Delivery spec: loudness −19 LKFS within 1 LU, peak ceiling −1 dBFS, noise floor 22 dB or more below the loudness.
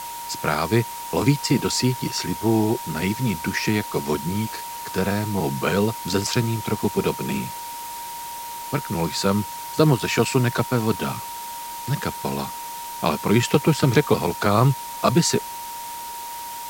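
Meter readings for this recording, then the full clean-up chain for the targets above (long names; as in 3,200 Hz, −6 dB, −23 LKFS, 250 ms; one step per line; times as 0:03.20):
interfering tone 940 Hz; level of the tone −32 dBFS; background noise floor −34 dBFS; target noise floor −46 dBFS; integrated loudness −23.5 LKFS; sample peak −2.0 dBFS; target loudness −19.0 LKFS
→ notch filter 940 Hz, Q 30
broadband denoise 12 dB, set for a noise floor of −34 dBFS
level +4.5 dB
brickwall limiter −1 dBFS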